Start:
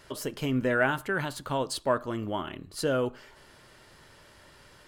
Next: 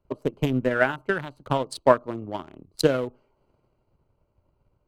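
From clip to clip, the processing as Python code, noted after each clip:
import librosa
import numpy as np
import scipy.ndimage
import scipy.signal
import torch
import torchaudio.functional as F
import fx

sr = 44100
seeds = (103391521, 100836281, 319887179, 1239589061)

y = fx.wiener(x, sr, points=25)
y = fx.transient(y, sr, attack_db=10, sustain_db=-5)
y = fx.band_widen(y, sr, depth_pct=40)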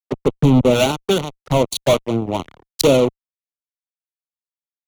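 y = fx.fuzz(x, sr, gain_db=29.0, gate_db=-37.0)
y = fx.env_flanger(y, sr, rest_ms=8.1, full_db=-19.0)
y = fx.band_widen(y, sr, depth_pct=70)
y = y * librosa.db_to_amplitude(4.0)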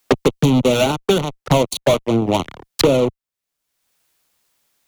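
y = fx.band_squash(x, sr, depth_pct=100)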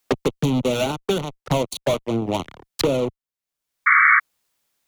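y = fx.spec_paint(x, sr, seeds[0], shape='noise', start_s=3.86, length_s=0.34, low_hz=1100.0, high_hz=2300.0, level_db=-8.0)
y = y * librosa.db_to_amplitude(-6.0)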